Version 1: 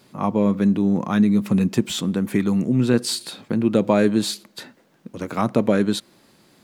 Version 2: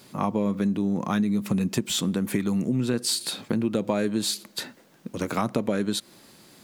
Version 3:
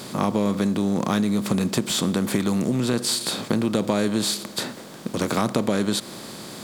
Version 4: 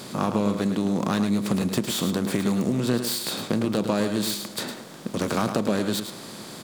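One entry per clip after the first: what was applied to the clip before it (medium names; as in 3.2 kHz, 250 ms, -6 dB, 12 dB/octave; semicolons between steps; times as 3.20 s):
treble shelf 4.1 kHz +6.5 dB; compression 4:1, threshold -24 dBFS, peak gain reduction 10.5 dB; trim +1.5 dB
spectral levelling over time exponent 0.6
self-modulated delay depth 0.1 ms; delay 107 ms -8.5 dB; trim -2 dB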